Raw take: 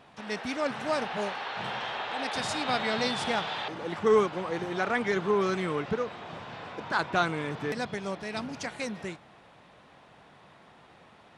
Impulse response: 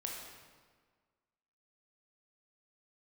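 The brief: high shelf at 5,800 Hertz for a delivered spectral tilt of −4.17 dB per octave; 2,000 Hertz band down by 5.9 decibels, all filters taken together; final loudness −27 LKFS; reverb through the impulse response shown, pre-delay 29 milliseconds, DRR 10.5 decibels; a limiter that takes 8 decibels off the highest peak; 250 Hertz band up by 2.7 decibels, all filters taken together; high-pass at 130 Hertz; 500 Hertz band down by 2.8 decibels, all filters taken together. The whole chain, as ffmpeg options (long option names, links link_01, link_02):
-filter_complex "[0:a]highpass=130,equalizer=frequency=250:width_type=o:gain=5.5,equalizer=frequency=500:width_type=o:gain=-5,equalizer=frequency=2000:width_type=o:gain=-7,highshelf=frequency=5800:gain=-7.5,alimiter=limit=-23dB:level=0:latency=1,asplit=2[link_01][link_02];[1:a]atrim=start_sample=2205,adelay=29[link_03];[link_02][link_03]afir=irnorm=-1:irlink=0,volume=-10.5dB[link_04];[link_01][link_04]amix=inputs=2:normalize=0,volume=7dB"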